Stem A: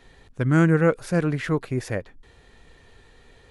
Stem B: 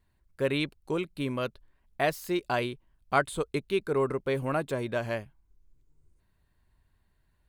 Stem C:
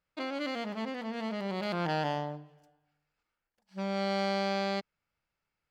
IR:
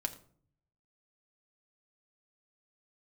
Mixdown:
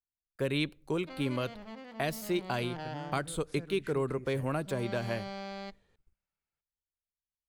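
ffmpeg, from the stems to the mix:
-filter_complex "[0:a]acompressor=threshold=-23dB:ratio=6,adelay=2450,volume=-19dB[a];[1:a]agate=range=-36dB:threshold=-57dB:ratio=16:detection=peak,volume=-1dB,asplit=2[b][c];[c]volume=-19dB[d];[2:a]adelay=900,volume=-10.5dB,asplit=2[e][f];[f]volume=-19.5dB[g];[3:a]atrim=start_sample=2205[h];[d][g]amix=inputs=2:normalize=0[i];[i][h]afir=irnorm=-1:irlink=0[j];[a][b][e][j]amix=inputs=4:normalize=0,acrossover=split=320|3000[k][l][m];[l]acompressor=threshold=-32dB:ratio=6[n];[k][n][m]amix=inputs=3:normalize=0"

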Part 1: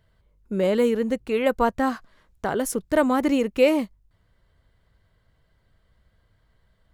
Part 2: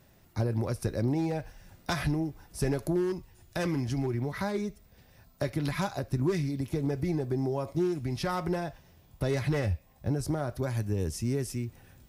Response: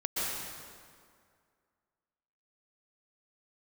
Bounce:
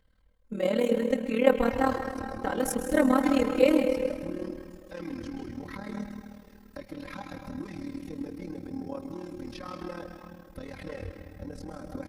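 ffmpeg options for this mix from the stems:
-filter_complex "[0:a]bandreject=f=47.78:t=h:w=4,bandreject=f=95.56:t=h:w=4,bandreject=f=143.34:t=h:w=4,bandreject=f=191.12:t=h:w=4,bandreject=f=238.9:t=h:w=4,bandreject=f=286.68:t=h:w=4,bandreject=f=334.46:t=h:w=4,bandreject=f=382.24:t=h:w=4,bandreject=f=430.02:t=h:w=4,bandreject=f=477.8:t=h:w=4,bandreject=f=525.58:t=h:w=4,bandreject=f=573.36:t=h:w=4,bandreject=f=621.14:t=h:w=4,bandreject=f=668.92:t=h:w=4,bandreject=f=716.7:t=h:w=4,bandreject=f=764.48:t=h:w=4,bandreject=f=812.26:t=h:w=4,bandreject=f=860.04:t=h:w=4,bandreject=f=907.82:t=h:w=4,bandreject=f=955.6:t=h:w=4,bandreject=f=1.00338k:t=h:w=4,bandreject=f=1.05116k:t=h:w=4,bandreject=f=1.09894k:t=h:w=4,bandreject=f=1.14672k:t=h:w=4,bandreject=f=1.1945k:t=h:w=4,bandreject=f=1.24228k:t=h:w=4,bandreject=f=1.29006k:t=h:w=4,bandreject=f=1.33784k:t=h:w=4,bandreject=f=1.38562k:t=h:w=4,bandreject=f=1.4334k:t=h:w=4,bandreject=f=1.48118k:t=h:w=4,bandreject=f=1.52896k:t=h:w=4,bandreject=f=1.57674k:t=h:w=4,bandreject=f=1.62452k:t=h:w=4,bandreject=f=1.6723k:t=h:w=4,bandreject=f=1.72008k:t=h:w=4,bandreject=f=1.76786k:t=h:w=4,bandreject=f=1.81564k:t=h:w=4,bandreject=f=1.86342k:t=h:w=4,volume=-5dB,asplit=2[a][b];[b]volume=-11dB[c];[1:a]acrossover=split=4700[d][e];[e]acompressor=threshold=-54dB:ratio=4:attack=1:release=60[f];[d][f]amix=inputs=2:normalize=0,bandreject=f=710:w=13,alimiter=level_in=3dB:limit=-24dB:level=0:latency=1:release=139,volume=-3dB,adelay=1350,volume=-4.5dB,asplit=2[g][h];[h]volume=-8dB[i];[2:a]atrim=start_sample=2205[j];[c][i]amix=inputs=2:normalize=0[k];[k][j]afir=irnorm=-1:irlink=0[l];[a][g][l]amix=inputs=3:normalize=0,aphaser=in_gain=1:out_gain=1:delay=3.2:decay=0.24:speed=0.67:type=triangular,tremolo=f=38:d=0.857,aecho=1:1:3.8:0.87"

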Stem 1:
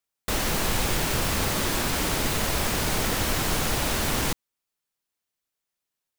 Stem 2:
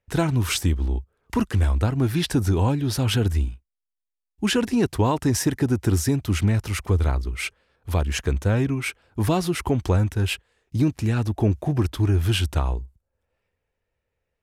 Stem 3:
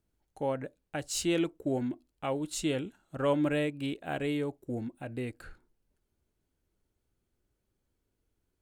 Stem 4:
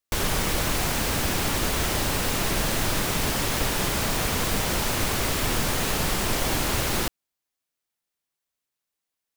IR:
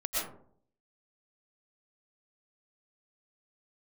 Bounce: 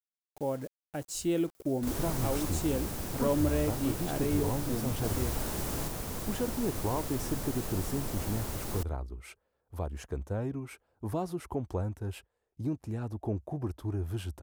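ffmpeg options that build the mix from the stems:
-filter_complex "[0:a]acompressor=mode=upward:threshold=-27dB:ratio=2.5,adelay=1550,volume=-9dB,asplit=3[a][b][c];[a]atrim=end=2.5,asetpts=PTS-STARTPTS,afade=t=out:st=2.496:d=0.004:c=hsin[d];[b]atrim=start=2.5:end=5.04,asetpts=PTS-STARTPTS,volume=0[e];[c]atrim=start=5.04,asetpts=PTS-STARTPTS,afade=t=in:d=0.004:c=hsin[f];[d][e][f]concat=n=3:v=0:a=1[g];[1:a]equalizer=f=740:t=o:w=2.3:g=8,adelay=1850,volume=-14.5dB[h];[2:a]acrusher=bits=7:mix=0:aa=0.000001,volume=0.5dB,asplit=2[i][j];[3:a]adelay=1750,volume=-10dB[k];[j]apad=whole_len=341029[l];[g][l]sidechaincompress=threshold=-30dB:ratio=8:attack=41:release=1490[m];[m][h][i][k]amix=inputs=4:normalize=0,equalizer=f=2.6k:w=0.5:g=-10"

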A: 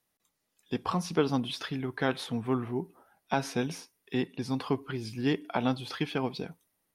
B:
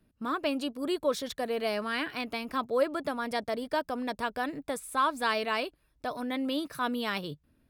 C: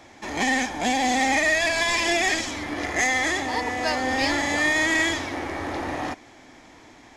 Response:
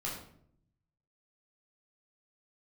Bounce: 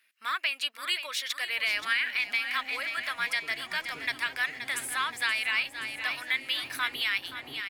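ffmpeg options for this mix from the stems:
-filter_complex "[0:a]adelay=2250,volume=-16.5dB,asplit=2[a][b];[b]volume=-10dB[c];[1:a]alimiter=limit=-23.5dB:level=0:latency=1:release=390,acontrast=58,highpass=f=2.1k:t=q:w=3.3,volume=2dB,asplit=2[d][e];[e]volume=-10.5dB[f];[2:a]acompressor=threshold=-25dB:ratio=6,adelay=1450,volume=-13dB,asplit=2[g][h];[h]volume=-18dB[i];[a][g]amix=inputs=2:normalize=0,equalizer=f=5.2k:w=1.5:g=-12,acompressor=threshold=-51dB:ratio=3,volume=0dB[j];[c][f][i]amix=inputs=3:normalize=0,aecho=0:1:525|1050|1575|2100|2625|3150|3675:1|0.47|0.221|0.104|0.0488|0.0229|0.0108[k];[d][j][k]amix=inputs=3:normalize=0,alimiter=limit=-16.5dB:level=0:latency=1:release=291"

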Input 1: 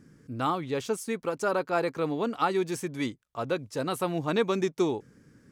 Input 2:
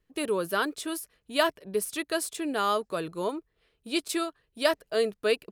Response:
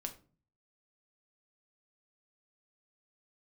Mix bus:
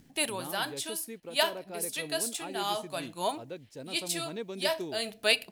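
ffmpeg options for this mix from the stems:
-filter_complex "[0:a]acrusher=bits=9:mix=0:aa=0.000001,volume=-11.5dB,asplit=2[a][b];[1:a]lowshelf=f=590:t=q:w=3:g=-8,adynamicequalizer=threshold=0.00891:dfrequency=2200:dqfactor=0.7:tfrequency=2200:tqfactor=0.7:attack=5:release=100:ratio=0.375:range=2.5:mode=boostabove:tftype=highshelf,volume=2.5dB,asplit=2[c][d];[d]volume=-6.5dB[e];[b]apad=whole_len=243036[f];[c][f]sidechaincompress=threshold=-53dB:ratio=8:attack=16:release=173[g];[2:a]atrim=start_sample=2205[h];[e][h]afir=irnorm=-1:irlink=0[i];[a][g][i]amix=inputs=3:normalize=0,acompressor=mode=upward:threshold=-52dB:ratio=2.5,equalizer=f=1.2k:w=1.9:g=-11.5"

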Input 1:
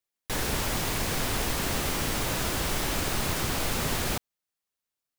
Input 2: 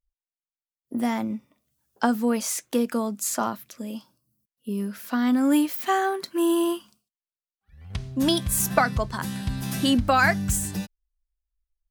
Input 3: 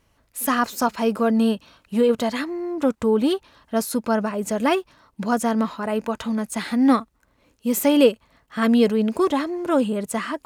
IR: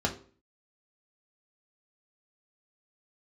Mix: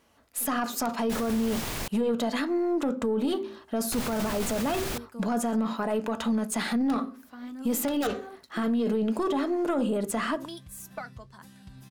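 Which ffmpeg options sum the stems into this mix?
-filter_complex "[0:a]bandreject=f=50:t=h:w=6,bandreject=f=100:t=h:w=6,adelay=800,volume=-4dB,asplit=3[a][b][c];[a]atrim=end=1.88,asetpts=PTS-STARTPTS,afade=t=out:st=1.876:d=0.004:c=hsin[d];[b]atrim=start=1.88:end=3.92,asetpts=PTS-STARTPTS,volume=0[e];[c]atrim=start=3.92,asetpts=PTS-STARTPTS,afade=t=in:d=0.004:c=hsin[f];[d][e][f]concat=n=3:v=0:a=1[g];[1:a]flanger=delay=3.1:depth=5.5:regen=51:speed=1.5:shape=sinusoidal,adelay=2200,volume=-13.5dB[h];[2:a]highpass=f=150:p=1,aeval=exprs='(mod(2.51*val(0)+1,2)-1)/2.51':c=same,volume=2dB,asplit=2[i][j];[j]volume=-19.5dB[k];[h][i]amix=inputs=2:normalize=0,aeval=exprs='(tanh(3.55*val(0)+0.4)-tanh(0.4))/3.55':c=same,acompressor=threshold=-25dB:ratio=6,volume=0dB[l];[3:a]atrim=start_sample=2205[m];[k][m]afir=irnorm=-1:irlink=0[n];[g][l][n]amix=inputs=3:normalize=0,alimiter=limit=-20dB:level=0:latency=1:release=11"

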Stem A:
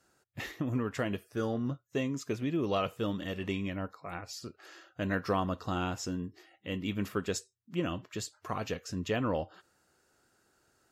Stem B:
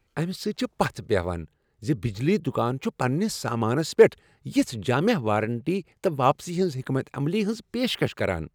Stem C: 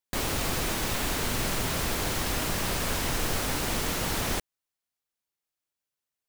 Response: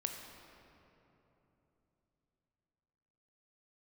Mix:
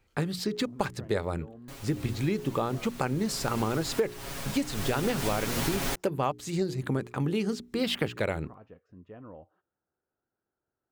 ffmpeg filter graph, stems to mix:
-filter_complex "[0:a]lowpass=1.2k,volume=-15dB[a];[1:a]bandreject=f=60:t=h:w=6,bandreject=f=120:t=h:w=6,bandreject=f=180:t=h:w=6,bandreject=f=240:t=h:w=6,bandreject=f=300:t=h:w=6,bandreject=f=360:t=h:w=6,bandreject=f=420:t=h:w=6,volume=0.5dB[b];[2:a]aecho=1:1:7.3:0.87,adelay=1550,volume=-1dB,afade=t=in:st=3.16:d=0.44:silence=0.354813,afade=t=in:st=4.72:d=0.55:silence=0.334965[c];[a][b][c]amix=inputs=3:normalize=0,acompressor=threshold=-24dB:ratio=8"

